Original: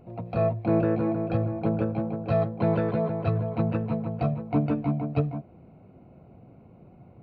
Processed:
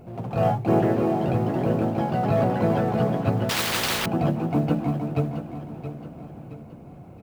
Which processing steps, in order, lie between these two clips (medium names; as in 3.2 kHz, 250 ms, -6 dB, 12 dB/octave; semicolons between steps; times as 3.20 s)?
companding laws mixed up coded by mu; ever faster or slower copies 84 ms, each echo +2 st, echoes 2; on a send: feedback delay 672 ms, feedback 44%, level -11 dB; 3.49–4.06 s: on the sum: spectrum-flattening compressor 10:1